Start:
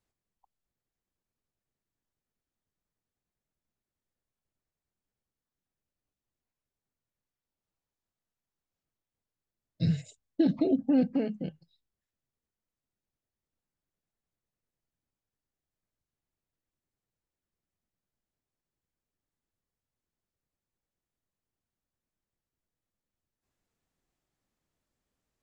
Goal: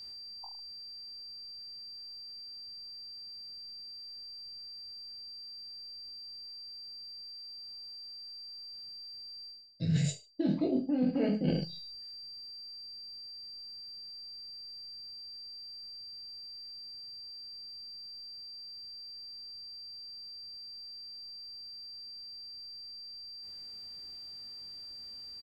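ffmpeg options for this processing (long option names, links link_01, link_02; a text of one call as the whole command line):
ffmpeg -i in.wav -af "acontrast=37,aecho=1:1:20|44|72.8|107.4|148.8:0.631|0.398|0.251|0.158|0.1,aeval=exprs='val(0)+0.00178*sin(2*PI*4700*n/s)':channel_layout=same,areverse,acompressor=threshold=-38dB:ratio=16,areverse,volume=11.5dB" out.wav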